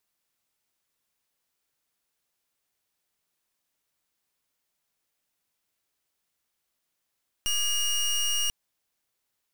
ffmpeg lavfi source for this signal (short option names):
-f lavfi -i "aevalsrc='0.0501*(2*lt(mod(2860*t,1),0.22)-1)':d=1.04:s=44100"